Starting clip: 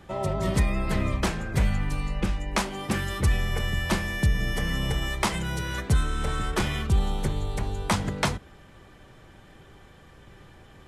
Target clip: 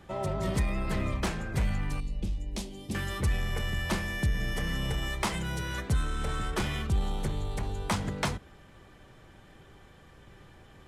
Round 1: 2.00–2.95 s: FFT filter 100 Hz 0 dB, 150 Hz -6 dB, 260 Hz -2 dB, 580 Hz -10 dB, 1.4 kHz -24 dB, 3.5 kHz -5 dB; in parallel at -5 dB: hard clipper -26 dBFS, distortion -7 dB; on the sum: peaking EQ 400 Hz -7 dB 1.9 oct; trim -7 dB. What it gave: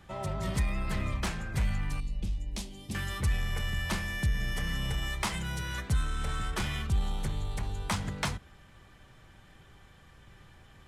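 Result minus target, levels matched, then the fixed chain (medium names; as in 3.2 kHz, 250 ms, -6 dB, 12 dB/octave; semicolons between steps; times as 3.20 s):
500 Hz band -4.5 dB
2.00–2.95 s: FFT filter 100 Hz 0 dB, 150 Hz -6 dB, 260 Hz -2 dB, 580 Hz -10 dB, 1.4 kHz -24 dB, 3.5 kHz -5 dB; in parallel at -5 dB: hard clipper -26 dBFS, distortion -7 dB; on the sum: trim -7 dB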